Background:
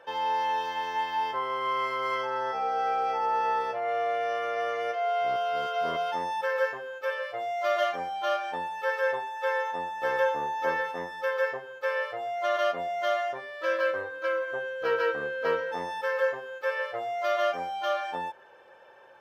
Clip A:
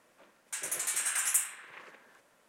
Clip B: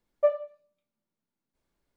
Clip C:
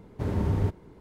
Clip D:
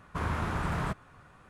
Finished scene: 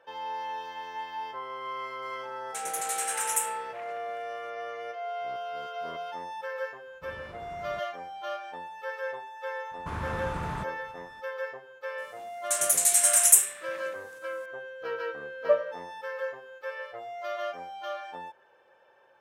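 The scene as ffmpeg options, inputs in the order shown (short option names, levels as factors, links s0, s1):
-filter_complex "[1:a]asplit=2[s0][s1];[4:a]asplit=2[s2][s3];[0:a]volume=0.422[s4];[s2]equalizer=f=440:t=o:w=0.92:g=8[s5];[s1]bass=f=250:g=8,treble=f=4000:g=12[s6];[s0]atrim=end=2.48,asetpts=PTS-STARTPTS,volume=0.944,afade=t=in:d=0.004:c=hsin,afade=t=out:st=2.476:d=0.004:c=hsin,adelay=2020[s7];[s5]atrim=end=1.49,asetpts=PTS-STARTPTS,volume=0.126,afade=t=in:d=0.004:c=hsin,afade=t=out:st=1.486:d=0.004:c=hsin,adelay=6870[s8];[s3]atrim=end=1.49,asetpts=PTS-STARTPTS,volume=0.668,afade=t=in:d=0.004:c=hsin,afade=t=out:st=1.486:d=0.004:c=hsin,adelay=9710[s9];[s6]atrim=end=2.48,asetpts=PTS-STARTPTS,volume=0.944,afade=t=in:d=0.004:c=hsin,afade=t=out:st=2.476:d=0.004:c=hsin,adelay=11980[s10];[2:a]atrim=end=1.96,asetpts=PTS-STARTPTS,afade=t=in:d=0.004:c=hsin,afade=t=out:st=1.956:d=0.004:c=hsin,adelay=15260[s11];[s4][s7][s8][s9][s10][s11]amix=inputs=6:normalize=0"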